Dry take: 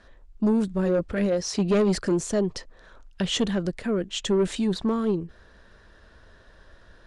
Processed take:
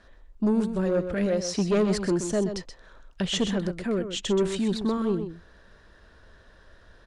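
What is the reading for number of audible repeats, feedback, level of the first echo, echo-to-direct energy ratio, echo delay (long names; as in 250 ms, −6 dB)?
1, repeats not evenly spaced, −9.0 dB, −9.0 dB, 127 ms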